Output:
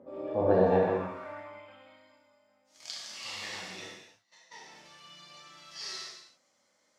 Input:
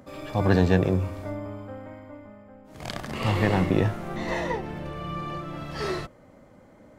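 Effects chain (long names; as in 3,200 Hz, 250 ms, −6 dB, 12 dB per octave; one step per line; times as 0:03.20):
0:03.86–0:04.52: noise gate −24 dBFS, range −31 dB
reverb whose tail is shaped and stops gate 340 ms falling, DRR −5 dB
band-pass filter sweep 450 Hz → 5,600 Hz, 0:00.42–0:02.24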